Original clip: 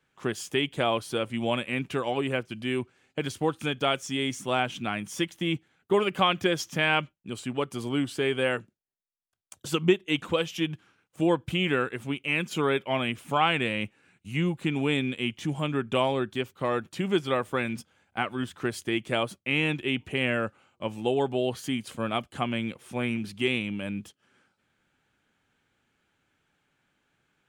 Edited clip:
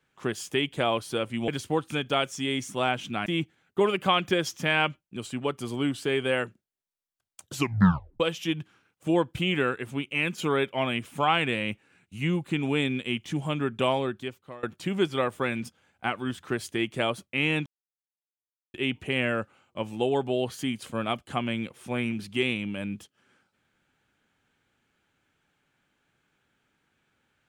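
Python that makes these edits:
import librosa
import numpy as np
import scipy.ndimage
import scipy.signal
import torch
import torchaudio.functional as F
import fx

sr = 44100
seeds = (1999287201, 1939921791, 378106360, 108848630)

y = fx.edit(x, sr, fx.cut(start_s=1.48, length_s=1.71),
    fx.cut(start_s=4.97, length_s=0.42),
    fx.tape_stop(start_s=9.66, length_s=0.67),
    fx.fade_out_to(start_s=16.08, length_s=0.68, floor_db=-23.5),
    fx.insert_silence(at_s=19.79, length_s=1.08), tone=tone)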